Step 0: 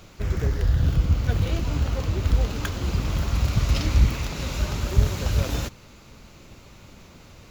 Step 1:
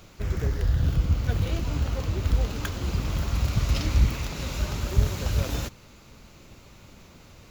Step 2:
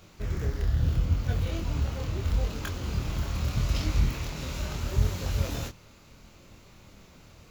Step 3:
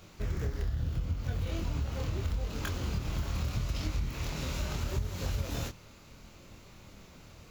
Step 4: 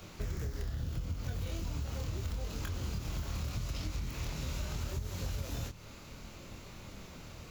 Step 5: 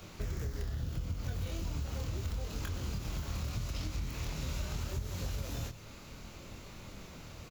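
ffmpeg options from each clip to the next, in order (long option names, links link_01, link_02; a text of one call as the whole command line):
ffmpeg -i in.wav -af "highshelf=frequency=11000:gain=3.5,volume=-2.5dB" out.wav
ffmpeg -i in.wav -af "flanger=delay=22.5:depth=4.6:speed=0.77" out.wav
ffmpeg -i in.wav -af "acompressor=threshold=-28dB:ratio=12" out.wav
ffmpeg -i in.wav -filter_complex "[0:a]acrossover=split=150|4700[link_01][link_02][link_03];[link_01]acompressor=threshold=-40dB:ratio=4[link_04];[link_02]acompressor=threshold=-49dB:ratio=4[link_05];[link_03]acompressor=threshold=-54dB:ratio=4[link_06];[link_04][link_05][link_06]amix=inputs=3:normalize=0,volume=4dB" out.wav
ffmpeg -i in.wav -af "aecho=1:1:122:0.188" out.wav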